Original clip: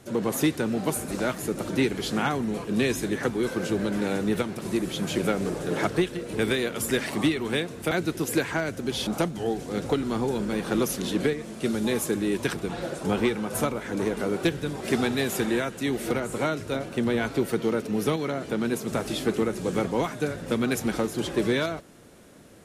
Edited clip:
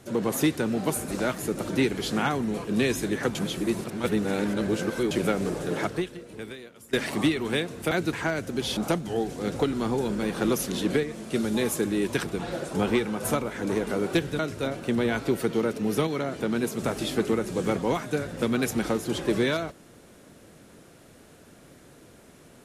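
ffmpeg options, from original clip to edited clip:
-filter_complex "[0:a]asplit=6[a][b][c][d][e][f];[a]atrim=end=3.352[g];[b]atrim=start=3.348:end=5.112,asetpts=PTS-STARTPTS,areverse[h];[c]atrim=start=5.108:end=6.93,asetpts=PTS-STARTPTS,afade=t=out:st=0.522:d=1.3:c=qua:silence=0.0891251[i];[d]atrim=start=6.93:end=8.132,asetpts=PTS-STARTPTS,afade=t=in:d=0.004:c=hsin:silence=0.0891251[j];[e]atrim=start=8.428:end=14.692[k];[f]atrim=start=16.478[l];[g][h]acrossfade=d=0.004:c1=hsin:c2=hsin[m];[i][j]concat=n=2:v=0:a=1[n];[m][n]acrossfade=d=0.004:c1=hsin:c2=hsin[o];[o][k]acrossfade=d=0.004:c1=hsin:c2=hsin[p];[p][l]acrossfade=d=0.004:c1=hsin:c2=hsin"

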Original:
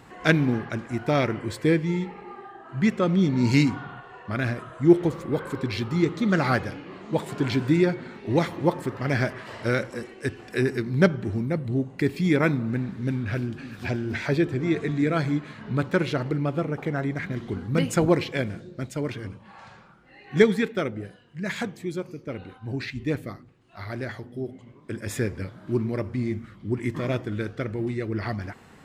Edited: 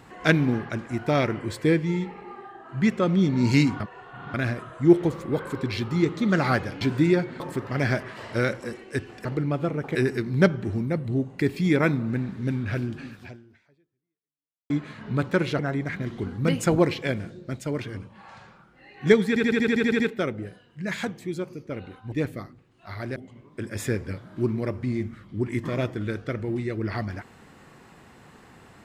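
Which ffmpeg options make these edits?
-filter_complex "[0:a]asplit=20[a][b][c][d][e][f][g][h][i][j][k][l][m][n][o][p][q][r][s][t];[a]atrim=end=3.802[u];[b]atrim=start=3.798:end=4.342,asetpts=PTS-STARTPTS,areverse[v];[c]atrim=start=4.338:end=6.812[w];[d]atrim=start=7.508:end=8.102[x];[e]atrim=start=8.698:end=10.552[y];[f]atrim=start=16.188:end=16.892[z];[g]atrim=start=10.548:end=15.3,asetpts=PTS-STARTPTS,afade=t=out:st=3.122:d=1.63:c=exp[aa];[h]atrim=start=15.3:end=16.192,asetpts=PTS-STARTPTS,afade=t=in:d=0.004:c=hsin[ab];[i]atrim=start=16.888:end=20.662[ac];[j]atrim=start=20.578:end=20.662[ad];[k]atrim=start=20.578:end=20.662[ae];[l]atrim=start=20.578:end=20.662[af];[m]atrim=start=20.578:end=20.662[ag];[n]atrim=start=20.578:end=20.662[ah];[o]atrim=start=20.578:end=20.662[ai];[p]atrim=start=20.578:end=20.662[aj];[q]atrim=start=20.578:end=20.662[ak];[r]atrim=start=20.578:end=22.702[al];[s]atrim=start=23.018:end=24.062[am];[t]atrim=start=24.468[an];[u][v]acrossfade=d=0.004:c1=hsin:c2=hsin[ao];[ao][w]acrossfade=d=0.004:c1=hsin:c2=hsin[ap];[ap][x]acrossfade=d=0.004:c1=hsin:c2=hsin[aq];[aq][y]acrossfade=d=0.004:c1=hsin:c2=hsin[ar];[ar][z]acrossfade=d=0.004:c1=hsin:c2=hsin[as];[aa][ab]concat=n=2:v=0:a=1[at];[as][at]acrossfade=d=0.004:c1=hsin:c2=hsin[au];[au][ac]acrossfade=d=0.004:c1=hsin:c2=hsin[av];[av][ad]acrossfade=d=0.004:c1=hsin:c2=hsin[aw];[aw][ae]acrossfade=d=0.004:c1=hsin:c2=hsin[ax];[ax][af]acrossfade=d=0.004:c1=hsin:c2=hsin[ay];[ay][ag]acrossfade=d=0.004:c1=hsin:c2=hsin[az];[az][ah]acrossfade=d=0.004:c1=hsin:c2=hsin[ba];[ba][ai]acrossfade=d=0.004:c1=hsin:c2=hsin[bb];[bb][aj]acrossfade=d=0.004:c1=hsin:c2=hsin[bc];[bc][ak]acrossfade=d=0.004:c1=hsin:c2=hsin[bd];[bd][al]acrossfade=d=0.004:c1=hsin:c2=hsin[be];[be][am]acrossfade=d=0.004:c1=hsin:c2=hsin[bf];[bf][an]acrossfade=d=0.004:c1=hsin:c2=hsin"

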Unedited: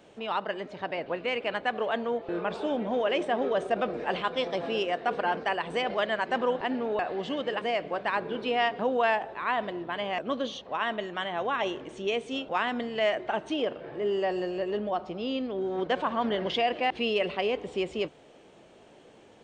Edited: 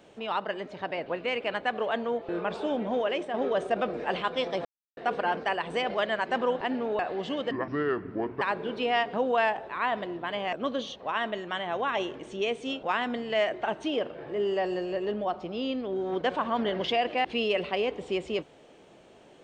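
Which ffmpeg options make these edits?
-filter_complex "[0:a]asplit=6[a][b][c][d][e][f];[a]atrim=end=3.34,asetpts=PTS-STARTPTS,afade=t=out:st=2.97:d=0.37:silence=0.446684[g];[b]atrim=start=3.34:end=4.65,asetpts=PTS-STARTPTS,afade=t=in:d=0.004:c=hsin:silence=0.446684,afade=t=out:st=1.306:d=0.004:c=hsin[h];[c]atrim=start=4.65:end=4.97,asetpts=PTS-STARTPTS,volume=0[i];[d]atrim=start=4.97:end=7.514,asetpts=PTS-STARTPTS,afade=t=in:d=0.004:c=hsin[j];[e]atrim=start=7.51:end=8.07,asetpts=PTS-STARTPTS,asetrate=27342,aresample=44100,atrim=end_sample=39832,asetpts=PTS-STARTPTS[k];[f]atrim=start=8.066[l];[g][h][i][j]concat=n=4:v=0:a=1[m];[m][k]acrossfade=d=0.004:c1=hsin:c2=hsin[n];[n][l]acrossfade=d=0.004:c1=hsin:c2=hsin"

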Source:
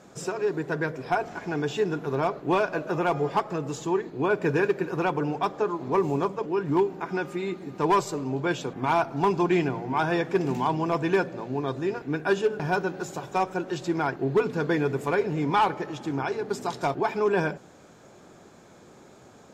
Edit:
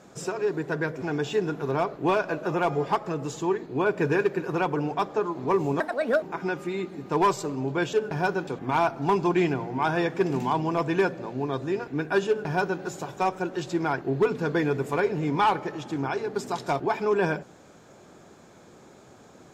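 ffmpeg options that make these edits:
-filter_complex "[0:a]asplit=6[a][b][c][d][e][f];[a]atrim=end=1.022[g];[b]atrim=start=1.458:end=6.244[h];[c]atrim=start=6.24:end=6.91,asetpts=PTS-STARTPTS,asetrate=69678,aresample=44100[i];[d]atrim=start=6.906:end=8.622[j];[e]atrim=start=12.418:end=12.962[k];[f]atrim=start=8.618[l];[g][h]acrossfade=d=0.004:c1=hsin:c2=hsin[m];[m][i]acrossfade=d=0.004:c1=hsin:c2=hsin[n];[n][j]acrossfade=d=0.004:c1=hsin:c2=hsin[o];[o][k]acrossfade=d=0.004:c1=hsin:c2=hsin[p];[p][l]acrossfade=d=0.004:c1=hsin:c2=hsin"

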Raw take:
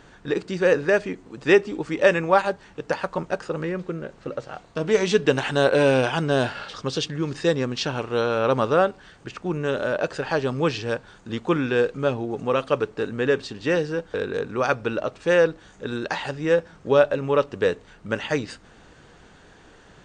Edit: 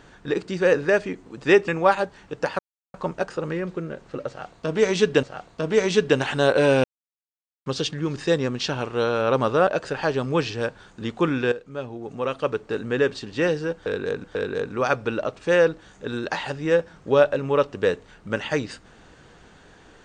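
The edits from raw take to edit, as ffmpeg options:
-filter_complex "[0:a]asplit=9[a][b][c][d][e][f][g][h][i];[a]atrim=end=1.682[j];[b]atrim=start=2.148:end=3.06,asetpts=PTS-STARTPTS,afade=t=out:st=0.908:d=0.004:c=hsin,apad=pad_dur=0.35[k];[c]atrim=start=3.06:end=5.352,asetpts=PTS-STARTPTS,afade=t=in:d=0.004:c=hsin[l];[d]atrim=start=4.398:end=6.01,asetpts=PTS-STARTPTS,afade=t=out:st=1.608:d=0.004:c=hsin[m];[e]atrim=start=6.01:end=6.83,asetpts=PTS-STARTPTS,volume=0[n];[f]atrim=start=6.83:end=8.842,asetpts=PTS-STARTPTS,afade=t=in:d=0.004:c=hsin[o];[g]atrim=start=9.948:end=11.8,asetpts=PTS-STARTPTS,afade=t=out:st=1.848:d=0.004:c=hsin:silence=0.188365[p];[h]atrim=start=11.8:end=14.522,asetpts=PTS-STARTPTS,afade=t=in:d=1.34:silence=0.188365[q];[i]atrim=start=14.028[r];[k][l]concat=n=2:v=0:a=1[s];[j][s]acrossfade=d=0.004:c1=hsin:c2=hsin[t];[m][n][o]concat=n=3:v=0:a=1[u];[t][u]acrossfade=d=0.004:c1=hsin:c2=hsin[v];[p][q]concat=n=2:v=0:a=1[w];[v][w]acrossfade=d=0.004:c1=hsin:c2=hsin[x];[x][r]acrossfade=d=0.004:c1=hsin:c2=hsin"

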